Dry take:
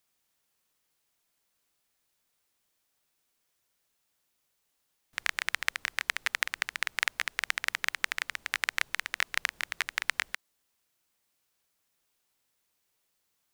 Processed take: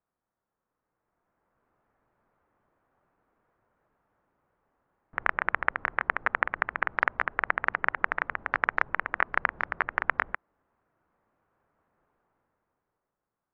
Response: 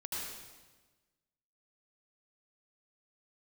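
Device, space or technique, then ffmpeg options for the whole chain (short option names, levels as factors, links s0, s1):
action camera in a waterproof case: -af "lowpass=f=1400:w=0.5412,lowpass=f=1400:w=1.3066,dynaudnorm=f=150:g=17:m=5.62" -ar 16000 -c:a aac -b:a 48k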